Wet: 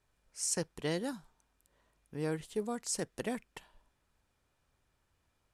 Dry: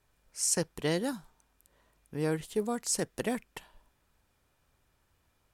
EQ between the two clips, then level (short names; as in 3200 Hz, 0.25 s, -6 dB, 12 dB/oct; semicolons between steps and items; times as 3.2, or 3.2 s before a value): LPF 11000 Hz 12 dB/oct; -4.5 dB